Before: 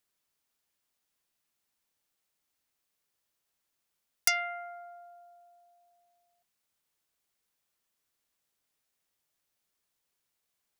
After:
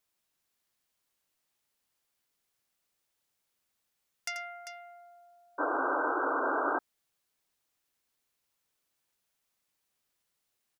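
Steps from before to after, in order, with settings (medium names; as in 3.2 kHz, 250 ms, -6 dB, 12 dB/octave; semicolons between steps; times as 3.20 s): Bessel low-pass 6.2 kHz; added noise white -73 dBFS; multi-tap echo 86/395 ms -9.5/-9.5 dB; painted sound noise, 5.58–6.79 s, 260–1600 Hz -21 dBFS; trim -9 dB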